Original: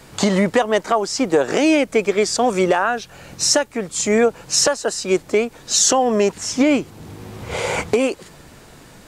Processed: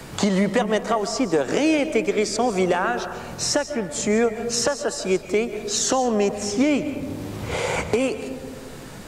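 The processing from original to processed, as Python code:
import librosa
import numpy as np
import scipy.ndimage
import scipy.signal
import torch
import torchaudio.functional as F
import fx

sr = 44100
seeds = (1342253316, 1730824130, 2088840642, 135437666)

y = fx.low_shelf(x, sr, hz=130.0, db=8.5)
y = fx.rev_freeverb(y, sr, rt60_s=1.4, hf_ratio=0.35, predelay_ms=100, drr_db=11.0)
y = fx.band_squash(y, sr, depth_pct=40)
y = F.gain(torch.from_numpy(y), -5.0).numpy()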